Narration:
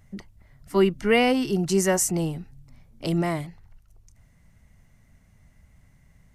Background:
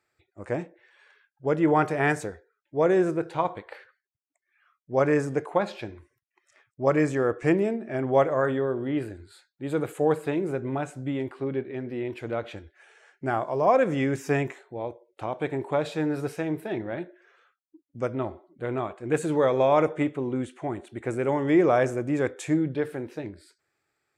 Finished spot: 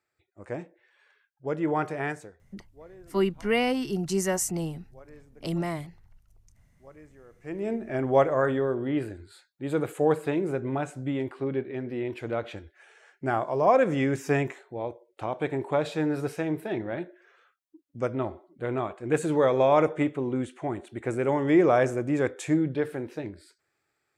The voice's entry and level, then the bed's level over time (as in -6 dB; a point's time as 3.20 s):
2.40 s, -5.0 dB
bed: 1.98 s -5.5 dB
2.90 s -28.5 dB
7.30 s -28.5 dB
7.73 s 0 dB